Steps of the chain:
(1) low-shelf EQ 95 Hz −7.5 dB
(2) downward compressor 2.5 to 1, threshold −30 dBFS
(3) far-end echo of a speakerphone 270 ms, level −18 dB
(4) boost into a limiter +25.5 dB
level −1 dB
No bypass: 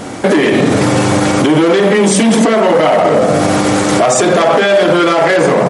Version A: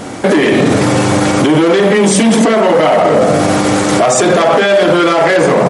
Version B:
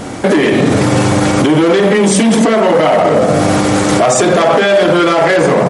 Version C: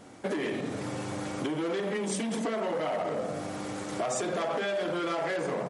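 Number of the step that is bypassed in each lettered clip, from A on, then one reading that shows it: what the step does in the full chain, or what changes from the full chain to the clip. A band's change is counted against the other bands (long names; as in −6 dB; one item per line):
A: 2, average gain reduction 5.0 dB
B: 1, 125 Hz band +2.0 dB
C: 4, change in crest factor +4.5 dB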